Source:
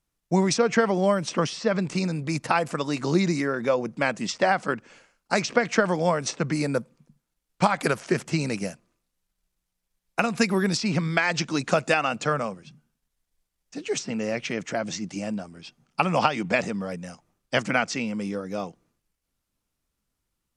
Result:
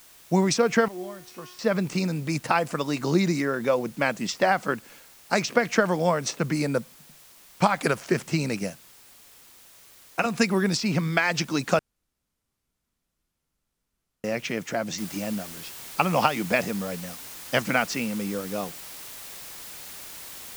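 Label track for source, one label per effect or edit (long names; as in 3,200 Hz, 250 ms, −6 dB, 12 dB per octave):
0.880000	1.590000	tuned comb filter 360 Hz, decay 0.61 s, mix 90%
8.700000	10.260000	notch comb filter 210 Hz
11.790000	14.240000	fill with room tone
14.980000	14.980000	noise floor change −52 dB −41 dB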